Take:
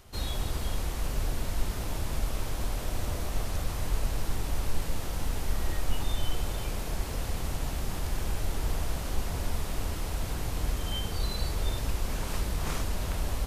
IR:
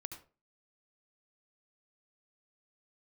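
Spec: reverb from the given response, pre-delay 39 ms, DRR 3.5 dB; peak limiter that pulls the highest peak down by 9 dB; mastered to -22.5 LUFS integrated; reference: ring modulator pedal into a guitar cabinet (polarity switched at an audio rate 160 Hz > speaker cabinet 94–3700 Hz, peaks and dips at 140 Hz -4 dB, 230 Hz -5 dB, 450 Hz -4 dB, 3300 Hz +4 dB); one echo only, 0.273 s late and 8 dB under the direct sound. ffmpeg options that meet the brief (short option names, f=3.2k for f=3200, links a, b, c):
-filter_complex "[0:a]alimiter=limit=-23dB:level=0:latency=1,aecho=1:1:273:0.398,asplit=2[a][b];[1:a]atrim=start_sample=2205,adelay=39[c];[b][c]afir=irnorm=-1:irlink=0,volume=-0.5dB[d];[a][d]amix=inputs=2:normalize=0,aeval=exprs='val(0)*sgn(sin(2*PI*160*n/s))':c=same,highpass=94,equalizer=f=140:t=q:w=4:g=-4,equalizer=f=230:t=q:w=4:g=-5,equalizer=f=450:t=q:w=4:g=-4,equalizer=f=3.3k:t=q:w=4:g=4,lowpass=f=3.7k:w=0.5412,lowpass=f=3.7k:w=1.3066,volume=9dB"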